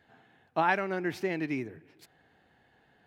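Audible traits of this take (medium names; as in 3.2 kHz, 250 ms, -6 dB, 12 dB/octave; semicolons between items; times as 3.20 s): noise floor -67 dBFS; spectral tilt -4.0 dB/octave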